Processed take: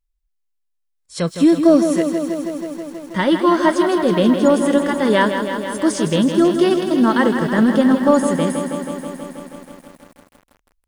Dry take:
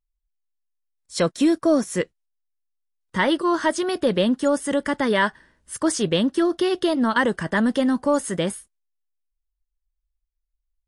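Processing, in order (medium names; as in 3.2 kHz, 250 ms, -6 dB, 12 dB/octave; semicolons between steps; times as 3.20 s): 6.11–6.91 s: slow attack 777 ms; harmonic-percussive split harmonic +9 dB; bit-crushed delay 161 ms, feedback 80%, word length 7-bit, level -8 dB; trim -3 dB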